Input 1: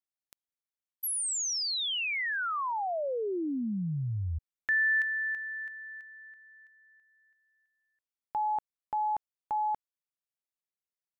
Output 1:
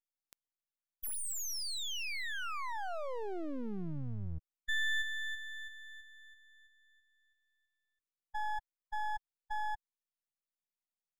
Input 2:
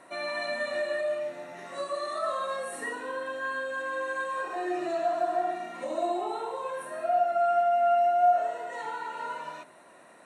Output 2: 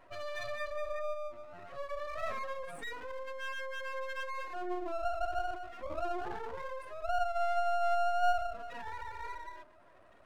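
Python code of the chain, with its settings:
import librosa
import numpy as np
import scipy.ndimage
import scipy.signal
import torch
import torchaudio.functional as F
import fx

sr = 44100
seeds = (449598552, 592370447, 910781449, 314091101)

y = fx.spec_expand(x, sr, power=2.1)
y = np.maximum(y, 0.0)
y = y * 10.0 ** (-2.5 / 20.0)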